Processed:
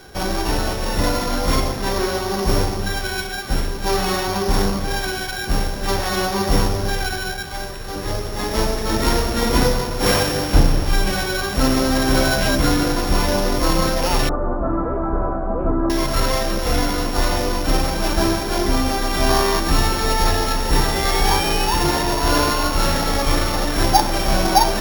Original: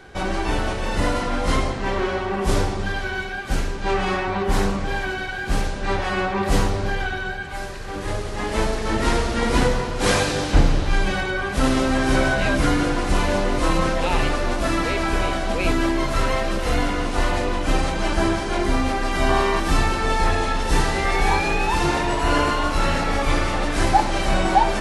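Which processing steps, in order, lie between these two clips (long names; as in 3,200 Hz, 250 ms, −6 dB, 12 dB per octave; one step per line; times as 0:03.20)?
samples sorted by size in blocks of 8 samples
0:14.29–0:15.90: Chebyshev low-pass filter 1,300 Hz, order 4
level +2 dB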